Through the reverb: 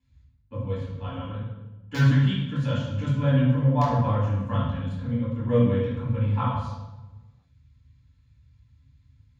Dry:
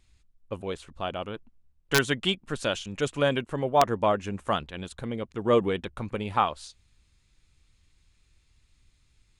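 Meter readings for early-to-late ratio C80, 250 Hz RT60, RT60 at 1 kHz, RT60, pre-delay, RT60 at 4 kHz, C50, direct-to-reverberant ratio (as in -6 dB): 4.0 dB, 1.2 s, 0.95 s, 1.1 s, 3 ms, 0.80 s, 0.5 dB, -12.0 dB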